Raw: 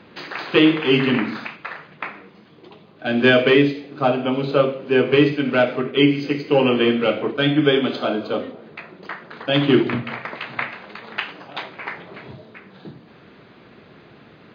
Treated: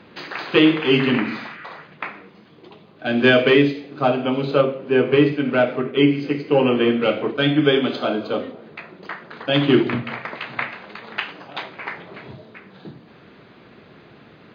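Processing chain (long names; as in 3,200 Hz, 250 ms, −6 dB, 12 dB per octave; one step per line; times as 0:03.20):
0:01.28–0:01.77: healed spectral selection 1,200–3,200 Hz both
0:04.61–0:07.02: high-shelf EQ 3,900 Hz −10 dB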